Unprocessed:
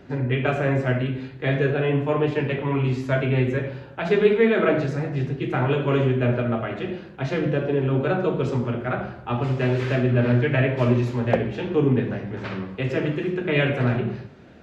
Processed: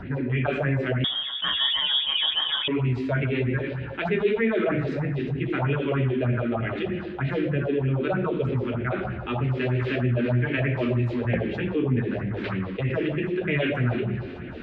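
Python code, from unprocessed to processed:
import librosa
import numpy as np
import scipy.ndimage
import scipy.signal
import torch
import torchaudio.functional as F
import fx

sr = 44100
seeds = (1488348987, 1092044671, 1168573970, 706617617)

y = fx.high_shelf(x, sr, hz=2100.0, db=11.5)
y = fx.phaser_stages(y, sr, stages=4, low_hz=110.0, high_hz=1100.0, hz=3.2, feedback_pct=35)
y = fx.air_absorb(y, sr, metres=490.0)
y = fx.comb_fb(y, sr, f0_hz=89.0, decay_s=1.6, harmonics='all', damping=0.0, mix_pct=50)
y = fx.freq_invert(y, sr, carrier_hz=3500, at=(1.04, 2.68))
y = fx.env_flatten(y, sr, amount_pct=50)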